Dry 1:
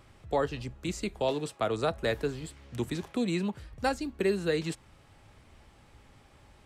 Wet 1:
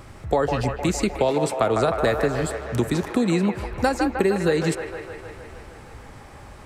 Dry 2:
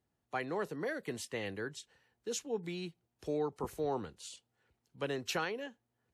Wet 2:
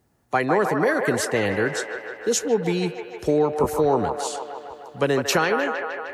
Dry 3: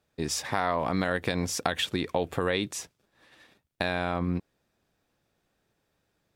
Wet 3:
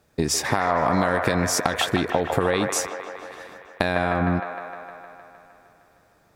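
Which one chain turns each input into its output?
parametric band 3,200 Hz −5.5 dB 0.94 octaves
downward compressor 4 to 1, threshold −32 dBFS
on a send: delay with a band-pass on its return 154 ms, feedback 71%, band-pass 1,100 Hz, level −3.5 dB
on the sum: loudness normalisation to −23 LKFS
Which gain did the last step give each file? +14.0, +17.0, +12.5 decibels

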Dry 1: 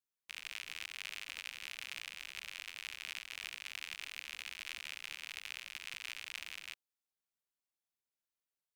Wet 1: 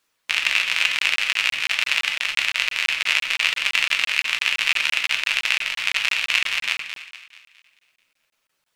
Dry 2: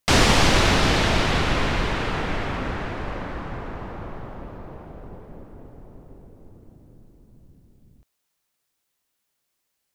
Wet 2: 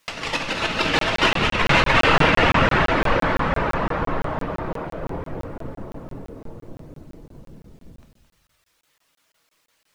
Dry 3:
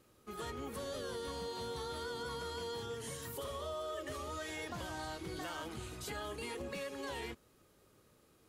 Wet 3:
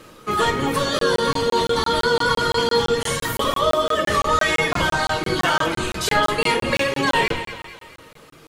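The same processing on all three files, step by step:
sub-octave generator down 1 octave, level +1 dB
reverb reduction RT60 1.1 s
notch filter 760 Hz, Q 12
dynamic equaliser 2,700 Hz, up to +6 dB, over −51 dBFS, Q 7.1
compressor whose output falls as the input rises −26 dBFS, ratio −0.5
flanger 0.25 Hz, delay 3.6 ms, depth 6.7 ms, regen −79%
mid-hump overdrive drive 15 dB, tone 3,200 Hz, clips at −14.5 dBFS
feedback echo with a high-pass in the loop 218 ms, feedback 47%, high-pass 440 Hz, level −10.5 dB
rectangular room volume 130 cubic metres, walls mixed, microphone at 0.57 metres
regular buffer underruns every 0.17 s, samples 1,024, zero, from 0:00.99
loudness normalisation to −20 LKFS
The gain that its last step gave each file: +22.5, +8.5, +21.0 decibels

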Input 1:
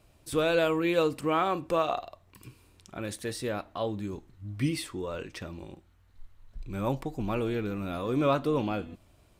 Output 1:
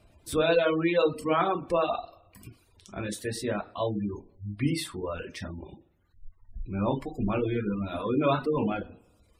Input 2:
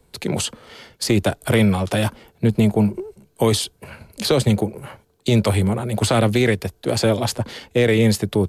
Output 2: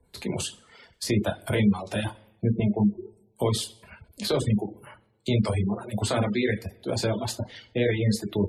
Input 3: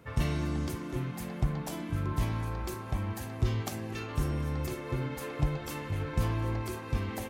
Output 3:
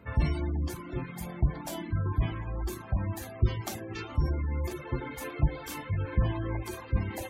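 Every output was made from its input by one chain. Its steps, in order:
coupled-rooms reverb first 0.51 s, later 1.6 s, DRR 1 dB
reverb reduction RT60 1 s
gate on every frequency bin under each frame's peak −30 dB strong
normalise the peak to −12 dBFS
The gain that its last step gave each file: +0.5, −9.0, +0.5 decibels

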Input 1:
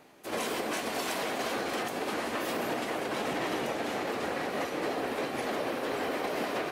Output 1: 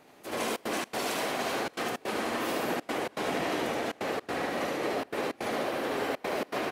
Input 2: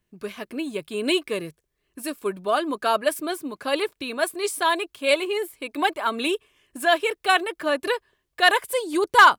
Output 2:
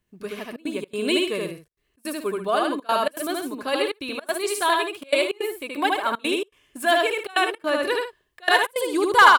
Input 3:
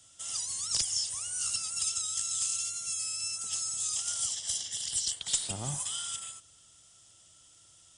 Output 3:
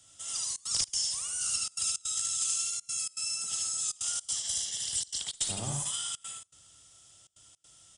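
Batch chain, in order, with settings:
loudspeakers that aren't time-aligned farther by 26 metres −2 dB, 46 metres −11 dB
gate pattern "xxxxxx.xx.xx" 161 BPM −24 dB
level −1 dB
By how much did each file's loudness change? +0.5, 0.0, +0.5 LU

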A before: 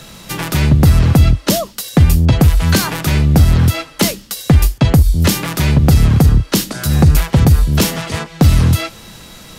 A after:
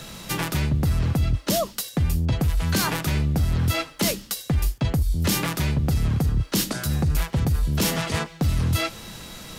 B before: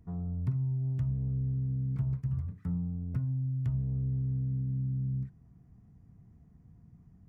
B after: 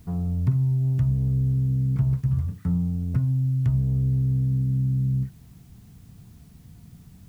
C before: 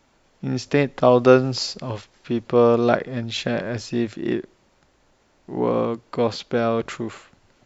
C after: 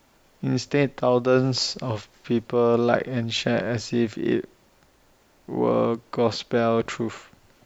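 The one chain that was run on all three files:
reversed playback
downward compressor, threshold −17 dBFS
reversed playback
bit-depth reduction 12 bits, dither triangular
loudness normalisation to −24 LKFS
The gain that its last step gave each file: −2.5, +9.0, +1.5 decibels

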